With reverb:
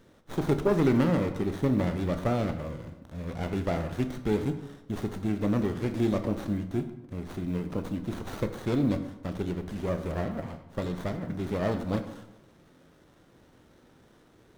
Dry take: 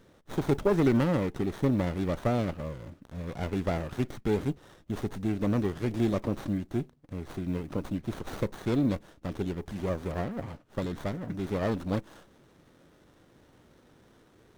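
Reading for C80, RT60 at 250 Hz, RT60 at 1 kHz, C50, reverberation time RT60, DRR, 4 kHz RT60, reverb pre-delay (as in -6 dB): 12.0 dB, 1.1 s, 0.90 s, 10.5 dB, 0.95 s, 7.5 dB, 0.60 s, 15 ms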